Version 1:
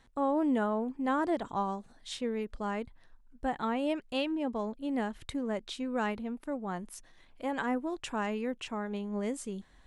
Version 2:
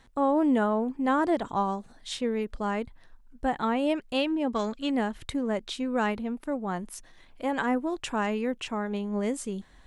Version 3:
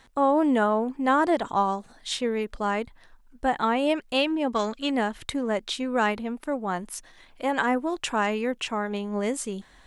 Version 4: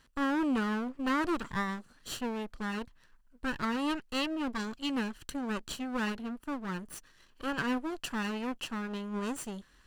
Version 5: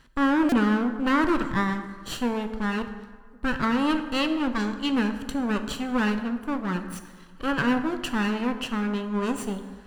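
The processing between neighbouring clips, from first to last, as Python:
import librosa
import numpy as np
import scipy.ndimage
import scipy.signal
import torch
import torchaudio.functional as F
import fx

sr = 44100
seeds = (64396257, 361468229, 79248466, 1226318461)

y1 = fx.spec_box(x, sr, start_s=4.54, length_s=0.37, low_hz=1100.0, high_hz=8100.0, gain_db=12)
y1 = y1 * librosa.db_to_amplitude(5.0)
y2 = fx.low_shelf(y1, sr, hz=360.0, db=-7.5)
y2 = y2 * librosa.db_to_amplitude(5.5)
y3 = fx.lower_of_two(y2, sr, delay_ms=0.67)
y3 = y3 * librosa.db_to_amplitude(-7.0)
y4 = fx.bass_treble(y3, sr, bass_db=3, treble_db=-5)
y4 = fx.rev_plate(y4, sr, seeds[0], rt60_s=1.6, hf_ratio=0.55, predelay_ms=0, drr_db=7.5)
y4 = fx.buffer_glitch(y4, sr, at_s=(0.49,), block=128, repeats=10)
y4 = y4 * librosa.db_to_amplitude(7.0)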